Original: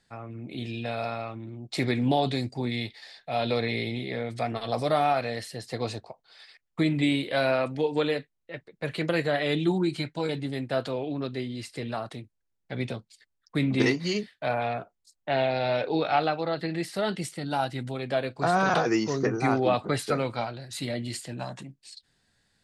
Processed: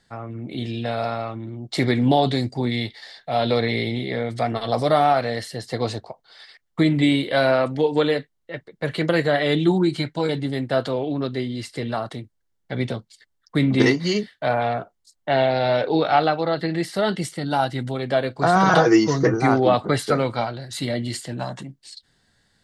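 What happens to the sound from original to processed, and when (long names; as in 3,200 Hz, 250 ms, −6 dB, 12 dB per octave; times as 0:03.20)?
0:18.55–0:19.34: comb filter 6.2 ms
whole clip: high-shelf EQ 7,600 Hz −4.5 dB; notch filter 2,500 Hz, Q 7.6; level +6.5 dB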